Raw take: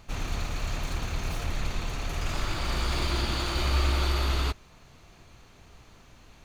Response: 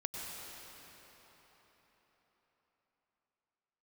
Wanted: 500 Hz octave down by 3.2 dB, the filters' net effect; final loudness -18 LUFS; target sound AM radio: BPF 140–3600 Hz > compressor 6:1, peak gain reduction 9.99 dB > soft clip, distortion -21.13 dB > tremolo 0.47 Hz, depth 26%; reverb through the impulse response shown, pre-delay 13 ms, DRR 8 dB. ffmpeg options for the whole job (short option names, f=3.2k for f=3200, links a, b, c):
-filter_complex "[0:a]equalizer=f=500:t=o:g=-4.5,asplit=2[a][b];[1:a]atrim=start_sample=2205,adelay=13[c];[b][c]afir=irnorm=-1:irlink=0,volume=-9.5dB[d];[a][d]amix=inputs=2:normalize=0,highpass=140,lowpass=3.6k,acompressor=threshold=-38dB:ratio=6,asoftclip=threshold=-33dB,tremolo=f=0.47:d=0.26,volume=25.5dB"